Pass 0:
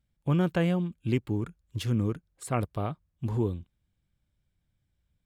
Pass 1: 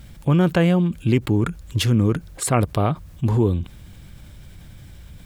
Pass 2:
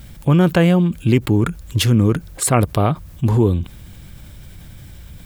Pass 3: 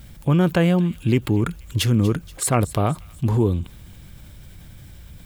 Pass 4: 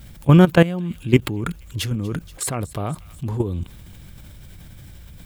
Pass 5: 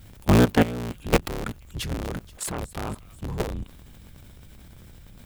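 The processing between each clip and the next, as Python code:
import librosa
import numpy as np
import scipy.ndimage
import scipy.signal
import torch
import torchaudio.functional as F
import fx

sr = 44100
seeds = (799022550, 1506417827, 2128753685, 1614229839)

y1 = fx.env_flatten(x, sr, amount_pct=50)
y1 = F.gain(torch.from_numpy(y1), 7.5).numpy()
y2 = fx.high_shelf(y1, sr, hz=12000.0, db=8.0)
y2 = F.gain(torch.from_numpy(y2), 3.5).numpy()
y3 = fx.echo_wet_highpass(y2, sr, ms=239, feedback_pct=44, hz=2500.0, wet_db=-15)
y3 = F.gain(torch.from_numpy(y3), -4.0).numpy()
y4 = fx.level_steps(y3, sr, step_db=16)
y4 = F.gain(torch.from_numpy(y4), 7.0).numpy()
y5 = fx.cycle_switch(y4, sr, every=3, mode='inverted')
y5 = F.gain(torch.from_numpy(y5), -5.5).numpy()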